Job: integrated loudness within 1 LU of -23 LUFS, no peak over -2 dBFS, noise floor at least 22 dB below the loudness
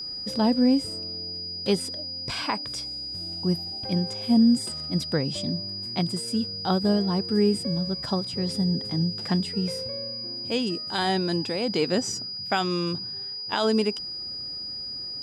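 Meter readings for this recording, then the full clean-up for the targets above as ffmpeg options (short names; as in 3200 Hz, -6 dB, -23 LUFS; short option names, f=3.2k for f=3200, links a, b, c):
steady tone 4900 Hz; tone level -32 dBFS; loudness -26.0 LUFS; peak -11.5 dBFS; loudness target -23.0 LUFS
-> -af "bandreject=f=4.9k:w=30"
-af "volume=3dB"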